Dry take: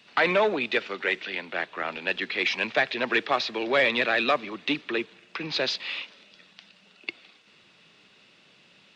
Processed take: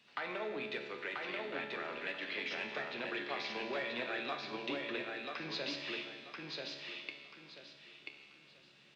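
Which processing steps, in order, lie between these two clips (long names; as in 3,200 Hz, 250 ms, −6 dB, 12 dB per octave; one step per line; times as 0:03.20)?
downward compressor, threshold −28 dBFS, peak gain reduction 10.5 dB
tuned comb filter 71 Hz, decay 1.6 s, harmonics all, mix 80%
repeating echo 986 ms, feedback 26%, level −3 dB
convolution reverb RT60 1.3 s, pre-delay 7 ms, DRR 7.5 dB
level +1.5 dB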